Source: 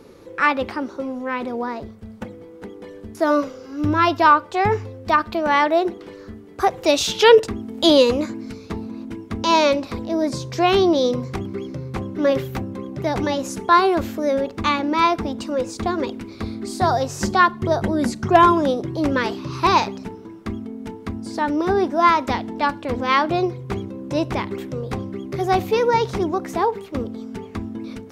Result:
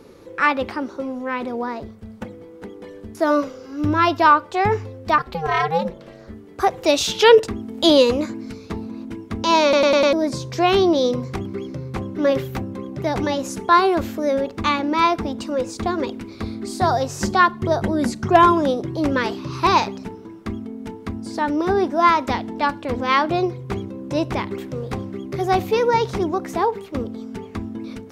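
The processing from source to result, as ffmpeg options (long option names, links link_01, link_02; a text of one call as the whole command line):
ffmpeg -i in.wav -filter_complex "[0:a]asettb=1/sr,asplit=3[link_01][link_02][link_03];[link_01]atrim=end=5.184[link_04];[link_02]atrim=start=5.18:end=6.3,asetpts=PTS-STARTPTS,afade=type=in:duration=0.004:curve=qsin,afade=type=out:start_time=1.116:duration=0.004:curve=qsin,aeval=exprs='val(0)*sin(2*PI*160*n/s)':channel_layout=same[link_05];[link_03]atrim=start=6.296[link_06];[link_04][link_05]acrossfade=duration=0.004:curve1=hsin:curve2=qsin[link_07];[link_07][link_06]acrossfade=duration=0.004:curve1=qsin:curve2=hsin,asettb=1/sr,asplit=3[link_08][link_09][link_10];[link_08]atrim=end=24.594[link_11];[link_09]atrim=start=24.59:end=25.18,asetpts=PTS-STARTPTS,afade=type=in:duration=0.004:curve=qsin,afade=type=out:start_time=0.586:duration=0.004:curve=qsin,aeval=exprs='sgn(val(0))*max(abs(val(0))-0.00282,0)':channel_layout=same[link_12];[link_10]atrim=start=25.176[link_13];[link_11][link_12]acrossfade=duration=0.004:curve1=hsin:curve2=qsin[link_14];[link_14][link_13]acrossfade=duration=0.004:curve1=qsin:curve2=hsin,asplit=6[link_15][link_16][link_17][link_18][link_19][link_20];[link_15]atrim=end=9.732[link_21];[link_16]atrim=start=9.628:end=9.732[link_22];[link_17]atrim=start=9.628:end=9.732[link_23];[link_18]atrim=start=9.628:end=9.732[link_24];[link_19]atrim=start=9.628:end=9.732[link_25];[link_20]atrim=start=10.128[link_26];[link_21][link_22]acrossfade=duration=0.004:curve1=hsin:curve2=hsin[link_27];[link_27][link_23]acrossfade=duration=0.004:curve1=hsin:curve2=hsin[link_28];[link_28][link_24]acrossfade=duration=0.004:curve1=hsin:curve2=hsin[link_29];[link_29][link_25]acrossfade=duration=0.004:curve1=hsin:curve2=hsin[link_30];[link_30][link_26]acrossfade=duration=0.004:curve1=hsin:curve2=hsin" out.wav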